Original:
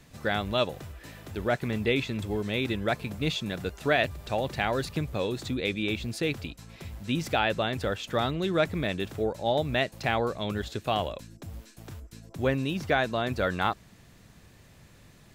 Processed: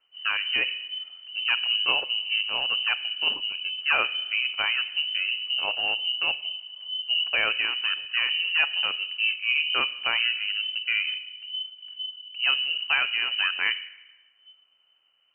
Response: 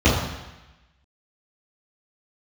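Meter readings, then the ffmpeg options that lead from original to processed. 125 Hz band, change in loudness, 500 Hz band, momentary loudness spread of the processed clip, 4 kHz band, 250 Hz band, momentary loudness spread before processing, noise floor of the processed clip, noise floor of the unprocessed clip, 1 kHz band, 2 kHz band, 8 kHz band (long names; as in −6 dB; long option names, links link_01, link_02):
below −25 dB, +4.5 dB, −15.0 dB, 10 LU, +13.5 dB, −22.5 dB, 16 LU, −65 dBFS, −55 dBFS, −4.5 dB, +8.0 dB, below −35 dB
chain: -filter_complex "[0:a]afwtdn=0.0178,asplit=2[link_01][link_02];[1:a]atrim=start_sample=2205,highshelf=frequency=5000:gain=-10.5[link_03];[link_02][link_03]afir=irnorm=-1:irlink=0,volume=-32.5dB[link_04];[link_01][link_04]amix=inputs=2:normalize=0,lowpass=frequency=2600:width_type=q:width=0.5098,lowpass=frequency=2600:width_type=q:width=0.6013,lowpass=frequency=2600:width_type=q:width=0.9,lowpass=frequency=2600:width_type=q:width=2.563,afreqshift=-3100,volume=1dB"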